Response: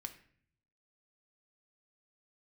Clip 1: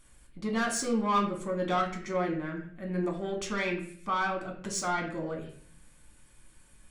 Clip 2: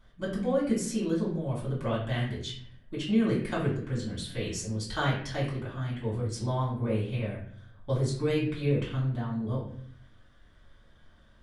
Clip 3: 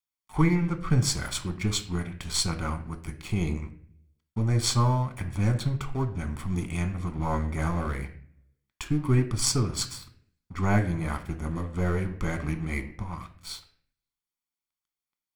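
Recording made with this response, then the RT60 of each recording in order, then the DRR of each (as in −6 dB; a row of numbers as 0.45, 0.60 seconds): 3; 0.55, 0.55, 0.55 seconds; 0.0, −8.0, 6.5 decibels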